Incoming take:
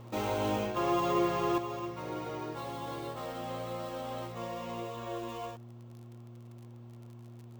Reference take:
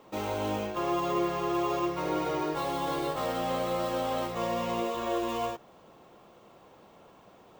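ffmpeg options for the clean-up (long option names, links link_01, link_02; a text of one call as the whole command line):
ffmpeg -i in.wav -af "adeclick=threshold=4,bandreject=frequency=118.1:width_type=h:width=4,bandreject=frequency=236.2:width_type=h:width=4,bandreject=frequency=354.3:width_type=h:width=4,asetnsamples=nb_out_samples=441:pad=0,asendcmd='1.58 volume volume 8.5dB',volume=0dB" out.wav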